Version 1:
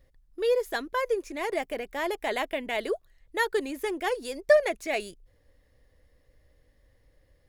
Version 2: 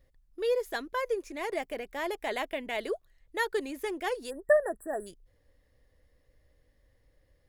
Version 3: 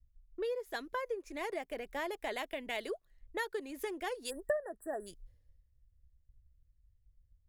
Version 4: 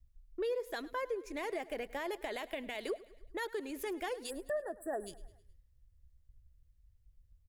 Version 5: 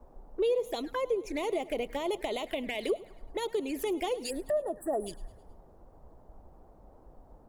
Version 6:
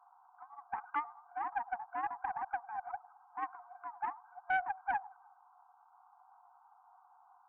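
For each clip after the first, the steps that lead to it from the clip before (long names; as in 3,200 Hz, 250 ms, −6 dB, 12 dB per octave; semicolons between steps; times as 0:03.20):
time-frequency box erased 0:04.30–0:05.07, 1,900–7,500 Hz; level −3.5 dB
downward compressor 6 to 1, threshold −39 dBFS, peak gain reduction 19.5 dB; multiband upward and downward expander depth 100%; level +3 dB
brickwall limiter −31.5 dBFS, peak gain reduction 10.5 dB; repeating echo 105 ms, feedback 53%, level −19 dB; level +2.5 dB
flanger swept by the level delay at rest 3.9 ms, full sweep at −36.5 dBFS; noise in a band 92–840 Hz −68 dBFS; level +8.5 dB
ring modulation 150 Hz; brick-wall band-pass 700–1,600 Hz; highs frequency-modulated by the lows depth 0.24 ms; level +5 dB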